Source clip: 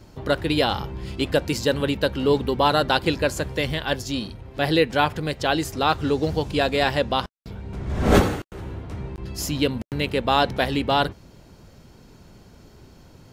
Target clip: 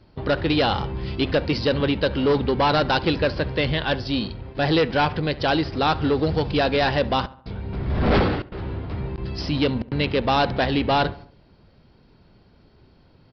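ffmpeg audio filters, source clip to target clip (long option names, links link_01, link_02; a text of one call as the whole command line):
ffmpeg -i in.wav -filter_complex "[0:a]agate=range=-10dB:threshold=-41dB:ratio=16:detection=peak,aresample=11025,asoftclip=type=tanh:threshold=-18dB,aresample=44100,asplit=2[link_01][link_02];[link_02]adelay=69,lowpass=frequency=2500:poles=1,volume=-18.5dB,asplit=2[link_03][link_04];[link_04]adelay=69,lowpass=frequency=2500:poles=1,volume=0.5,asplit=2[link_05][link_06];[link_06]adelay=69,lowpass=frequency=2500:poles=1,volume=0.5,asplit=2[link_07][link_08];[link_08]adelay=69,lowpass=frequency=2500:poles=1,volume=0.5[link_09];[link_01][link_03][link_05][link_07][link_09]amix=inputs=5:normalize=0,volume=4dB" out.wav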